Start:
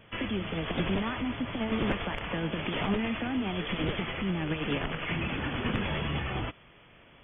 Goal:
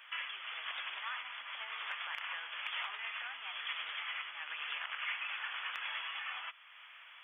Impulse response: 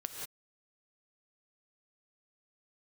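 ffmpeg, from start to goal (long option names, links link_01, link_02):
-af "acompressor=threshold=-51dB:ratio=1.5,highpass=frequency=1100:width=0.5412,highpass=frequency=1100:width=1.3066,asoftclip=type=hard:threshold=-30.5dB,volume=5dB"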